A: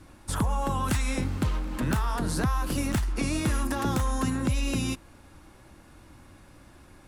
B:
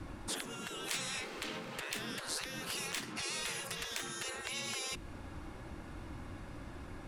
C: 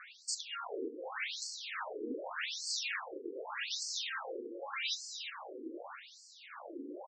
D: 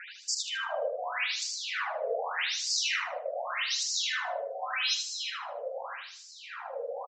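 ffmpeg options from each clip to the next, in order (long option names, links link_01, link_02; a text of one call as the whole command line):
ffmpeg -i in.wav -filter_complex "[0:a]afftfilt=real='re*lt(hypot(re,im),0.0501)':imag='im*lt(hypot(re,im),0.0501)':win_size=1024:overlap=0.75,lowpass=frequency=3000:poles=1,acrossover=split=420|1900[link_01][link_02][link_03];[link_02]acompressor=threshold=-56dB:ratio=6[link_04];[link_01][link_04][link_03]amix=inputs=3:normalize=0,volume=5.5dB" out.wav
ffmpeg -i in.wav -af "asoftclip=type=tanh:threshold=-37dB,aecho=1:1:348|696|1044|1392|1740|2088:0.376|0.203|0.11|0.0592|0.032|0.0173,afftfilt=real='re*between(b*sr/1024,340*pow(6100/340,0.5+0.5*sin(2*PI*0.84*pts/sr))/1.41,340*pow(6100/340,0.5+0.5*sin(2*PI*0.84*pts/sr))*1.41)':imag='im*between(b*sr/1024,340*pow(6100/340,0.5+0.5*sin(2*PI*0.84*pts/sr))/1.41,340*pow(6100/340,0.5+0.5*sin(2*PI*0.84*pts/sr))*1.41)':win_size=1024:overlap=0.75,volume=10.5dB" out.wav
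ffmpeg -i in.wav -af "aecho=1:1:77|154|231|308:0.531|0.143|0.0387|0.0104,aresample=16000,aresample=44100,afreqshift=200,volume=7dB" out.wav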